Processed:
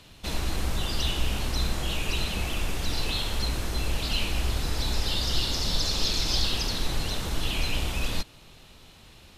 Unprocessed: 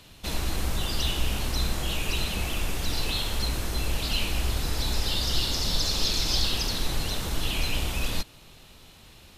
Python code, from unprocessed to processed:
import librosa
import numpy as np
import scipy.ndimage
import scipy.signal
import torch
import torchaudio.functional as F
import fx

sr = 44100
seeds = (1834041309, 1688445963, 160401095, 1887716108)

y = fx.high_shelf(x, sr, hz=11000.0, db=-7.5)